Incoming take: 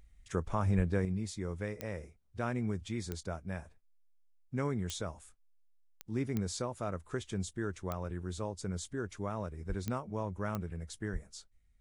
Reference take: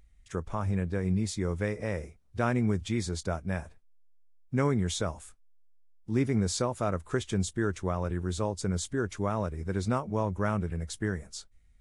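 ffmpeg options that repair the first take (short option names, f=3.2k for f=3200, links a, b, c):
-filter_complex "[0:a]adeclick=t=4,asplit=3[a][b][c];[a]afade=t=out:st=0.76:d=0.02[d];[b]highpass=f=140:w=0.5412,highpass=f=140:w=1.3066,afade=t=in:st=0.76:d=0.02,afade=t=out:st=0.88:d=0.02[e];[c]afade=t=in:st=0.88:d=0.02[f];[d][e][f]amix=inputs=3:normalize=0,asplit=3[g][h][i];[g]afade=t=out:st=9.68:d=0.02[j];[h]highpass=f=140:w=0.5412,highpass=f=140:w=1.3066,afade=t=in:st=9.68:d=0.02,afade=t=out:st=9.8:d=0.02[k];[i]afade=t=in:st=9.8:d=0.02[l];[j][k][l]amix=inputs=3:normalize=0,asplit=3[m][n][o];[m]afade=t=out:st=11.12:d=0.02[p];[n]highpass=f=140:w=0.5412,highpass=f=140:w=1.3066,afade=t=in:st=11.12:d=0.02,afade=t=out:st=11.24:d=0.02[q];[o]afade=t=in:st=11.24:d=0.02[r];[p][q][r]amix=inputs=3:normalize=0,asetnsamples=n=441:p=0,asendcmd='1.05 volume volume 7.5dB',volume=0dB"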